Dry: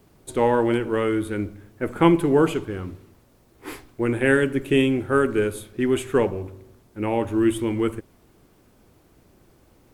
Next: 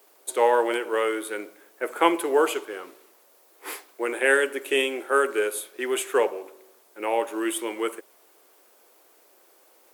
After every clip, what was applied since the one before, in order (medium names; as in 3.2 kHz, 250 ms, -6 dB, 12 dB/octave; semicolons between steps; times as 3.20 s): high-pass 440 Hz 24 dB/octave; treble shelf 8.3 kHz +9.5 dB; trim +1.5 dB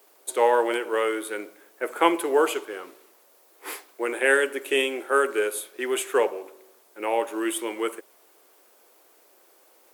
no audible change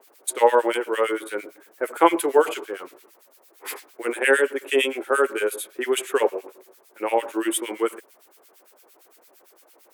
harmonic tremolo 8.8 Hz, depth 100%, crossover 1.6 kHz; trim +6.5 dB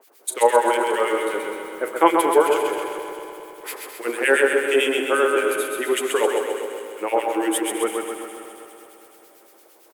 backward echo that repeats 103 ms, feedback 81%, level -12 dB; on a send: feedback delay 131 ms, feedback 58%, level -4.5 dB